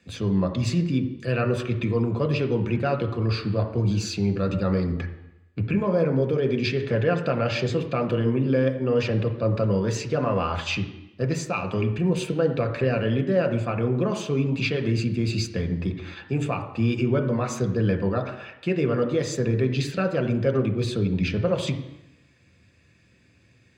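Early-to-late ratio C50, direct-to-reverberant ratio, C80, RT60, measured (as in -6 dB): 10.0 dB, 5.0 dB, 12.0 dB, 0.85 s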